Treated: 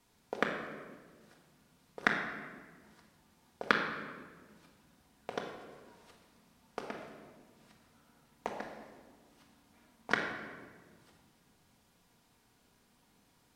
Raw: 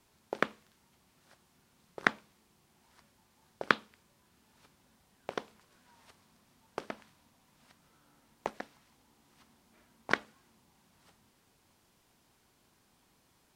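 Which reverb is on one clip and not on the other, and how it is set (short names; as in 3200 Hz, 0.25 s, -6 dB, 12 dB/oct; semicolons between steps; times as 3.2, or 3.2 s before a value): shoebox room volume 1600 m³, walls mixed, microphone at 1.8 m; gain -3 dB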